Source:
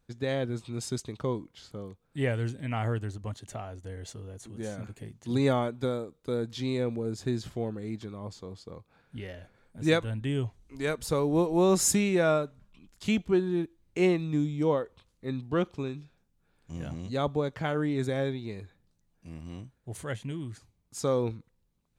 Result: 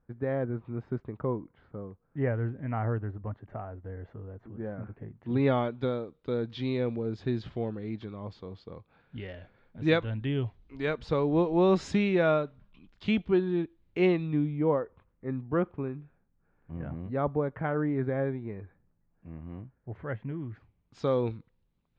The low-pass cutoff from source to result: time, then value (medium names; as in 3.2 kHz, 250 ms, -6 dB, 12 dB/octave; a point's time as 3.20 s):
low-pass 24 dB/octave
5.09 s 1.7 kHz
5.59 s 3.8 kHz
14.11 s 3.8 kHz
14.76 s 1.9 kHz
20.37 s 1.9 kHz
21.03 s 3.9 kHz